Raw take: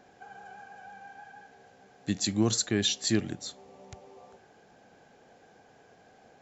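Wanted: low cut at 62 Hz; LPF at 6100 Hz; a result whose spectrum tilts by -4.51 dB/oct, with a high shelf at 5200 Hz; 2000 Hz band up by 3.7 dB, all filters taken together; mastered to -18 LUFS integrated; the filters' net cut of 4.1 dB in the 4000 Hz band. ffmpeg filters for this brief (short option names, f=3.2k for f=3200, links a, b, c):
-af "highpass=62,lowpass=6.1k,equalizer=f=2k:t=o:g=6,equalizer=f=4k:t=o:g=-3.5,highshelf=f=5.2k:g=-5,volume=12dB"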